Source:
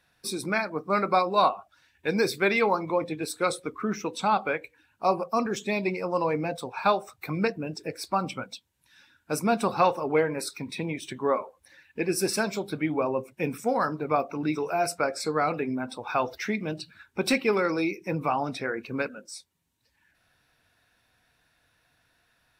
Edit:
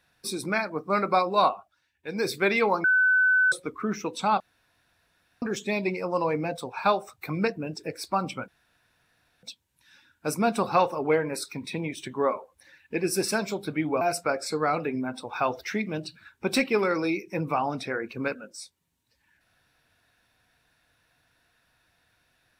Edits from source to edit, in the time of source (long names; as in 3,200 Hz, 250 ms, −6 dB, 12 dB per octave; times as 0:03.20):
0:01.52–0:02.31: duck −10.5 dB, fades 0.34 s quadratic
0:02.84–0:03.52: beep over 1,510 Hz −17.5 dBFS
0:04.40–0:05.42: fill with room tone
0:08.48: splice in room tone 0.95 s
0:13.06–0:14.75: remove